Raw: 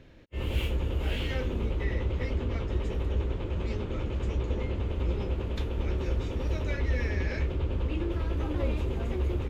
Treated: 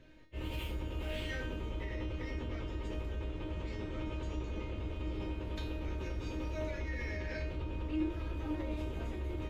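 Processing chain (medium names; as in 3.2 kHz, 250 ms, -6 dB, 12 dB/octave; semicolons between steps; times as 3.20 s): peak limiter -24 dBFS, peak gain reduction 7 dB; feedback comb 310 Hz, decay 0.51 s, harmonics all, mix 90%; de-hum 46.02 Hz, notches 32; trim +11 dB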